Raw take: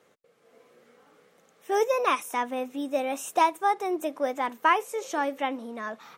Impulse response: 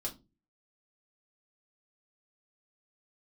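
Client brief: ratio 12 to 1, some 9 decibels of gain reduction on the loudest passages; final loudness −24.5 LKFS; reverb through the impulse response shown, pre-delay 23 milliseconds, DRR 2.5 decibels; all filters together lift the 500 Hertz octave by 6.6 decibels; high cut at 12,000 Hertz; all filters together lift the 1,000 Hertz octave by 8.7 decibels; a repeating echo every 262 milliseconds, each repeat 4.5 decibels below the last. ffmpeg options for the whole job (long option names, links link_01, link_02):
-filter_complex "[0:a]lowpass=12000,equalizer=frequency=500:width_type=o:gain=5.5,equalizer=frequency=1000:width_type=o:gain=8.5,acompressor=threshold=-17dB:ratio=12,aecho=1:1:262|524|786|1048|1310|1572|1834|2096|2358:0.596|0.357|0.214|0.129|0.0772|0.0463|0.0278|0.0167|0.01,asplit=2[link_01][link_02];[1:a]atrim=start_sample=2205,adelay=23[link_03];[link_02][link_03]afir=irnorm=-1:irlink=0,volume=-3dB[link_04];[link_01][link_04]amix=inputs=2:normalize=0,volume=-4dB"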